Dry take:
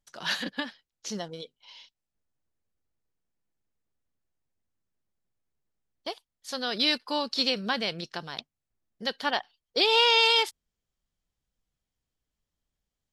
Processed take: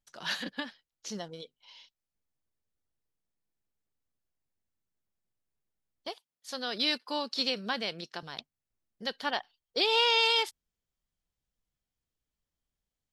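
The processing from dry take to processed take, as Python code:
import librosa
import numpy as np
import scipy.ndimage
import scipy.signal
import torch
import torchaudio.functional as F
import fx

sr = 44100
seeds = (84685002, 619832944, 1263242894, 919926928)

y = fx.highpass(x, sr, hz=170.0, slope=12, at=(6.08, 8.23))
y = y * librosa.db_to_amplitude(-4.0)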